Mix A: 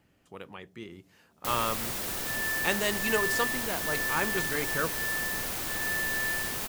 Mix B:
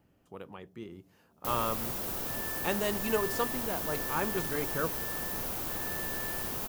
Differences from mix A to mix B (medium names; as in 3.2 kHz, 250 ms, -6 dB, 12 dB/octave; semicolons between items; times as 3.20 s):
second sound -5.0 dB; master: add graphic EQ 2/4/8 kHz -7/-5/-6 dB